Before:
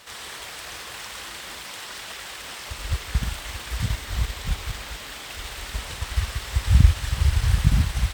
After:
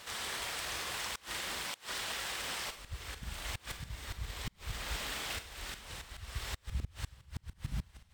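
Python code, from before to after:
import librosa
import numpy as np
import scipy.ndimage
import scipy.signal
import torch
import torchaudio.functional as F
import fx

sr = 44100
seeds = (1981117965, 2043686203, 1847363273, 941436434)

y = fx.auto_swell(x, sr, attack_ms=478.0)
y = fx.rev_schroeder(y, sr, rt60_s=0.49, comb_ms=33, drr_db=8.5)
y = fx.gate_flip(y, sr, shuts_db=-23.0, range_db=-25)
y = y * librosa.db_to_amplitude(-2.5)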